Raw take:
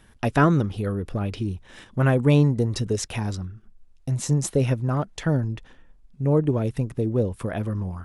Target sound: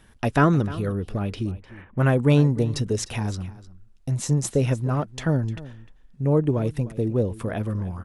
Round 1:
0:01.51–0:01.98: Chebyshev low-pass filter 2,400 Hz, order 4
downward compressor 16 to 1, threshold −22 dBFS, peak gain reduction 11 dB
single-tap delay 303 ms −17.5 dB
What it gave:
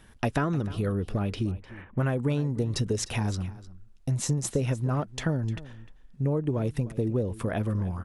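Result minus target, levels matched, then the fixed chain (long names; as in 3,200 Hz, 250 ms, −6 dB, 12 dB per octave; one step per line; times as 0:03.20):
downward compressor: peak gain reduction +11 dB
0:01.51–0:01.98: Chebyshev low-pass filter 2,400 Hz, order 4
single-tap delay 303 ms −17.5 dB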